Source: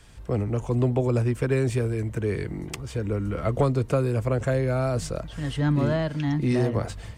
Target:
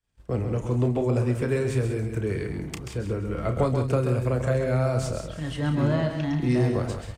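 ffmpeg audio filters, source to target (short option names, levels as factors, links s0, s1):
-filter_complex "[0:a]asplit=2[s0][s1];[s1]aecho=0:1:32.07|186.6:0.355|0.282[s2];[s0][s2]amix=inputs=2:normalize=0,agate=range=0.0224:threshold=0.02:ratio=3:detection=peak,asplit=2[s3][s4];[s4]aecho=0:1:133:0.422[s5];[s3][s5]amix=inputs=2:normalize=0,volume=0.794"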